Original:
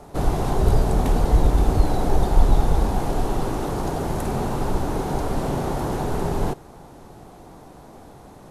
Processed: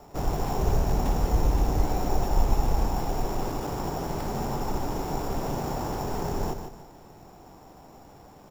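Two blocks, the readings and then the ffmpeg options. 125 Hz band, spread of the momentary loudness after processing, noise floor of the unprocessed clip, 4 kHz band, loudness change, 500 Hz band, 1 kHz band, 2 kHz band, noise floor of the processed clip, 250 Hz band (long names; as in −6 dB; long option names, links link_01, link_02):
−6.5 dB, 6 LU, −45 dBFS, −3.5 dB, −5.5 dB, −6.0 dB, −4.0 dB, −5.5 dB, −50 dBFS, −6.0 dB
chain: -filter_complex "[0:a]equalizer=frequency=860:width_type=o:width=0.77:gain=3,acrusher=samples=7:mix=1:aa=0.000001,asplit=2[link_01][link_02];[link_02]aecho=0:1:151|302|453|604:0.398|0.123|0.0383|0.0119[link_03];[link_01][link_03]amix=inputs=2:normalize=0,volume=-7dB"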